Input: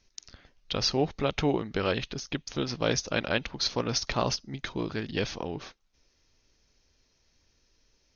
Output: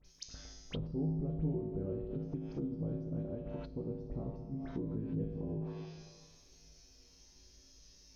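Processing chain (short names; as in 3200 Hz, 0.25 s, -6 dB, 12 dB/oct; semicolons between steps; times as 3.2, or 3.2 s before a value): bell 1700 Hz -8.5 dB 2.9 oct; in parallel at +2 dB: limiter -20.5 dBFS, peak gain reduction 5 dB; on the sum: high shelf 5000 Hz +10 dB; compressor 1.5:1, threshold -47 dBFS, peak gain reduction 11 dB; resonator 53 Hz, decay 1.1 s, harmonics odd, mix 90%; dispersion highs, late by 53 ms, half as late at 2500 Hz; on a send at -7 dB: reverb RT60 1.9 s, pre-delay 10 ms; on the sum: soft clip -34.5 dBFS, distortion -25 dB; treble ducked by the level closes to 350 Hz, closed at -45.5 dBFS; gain +13 dB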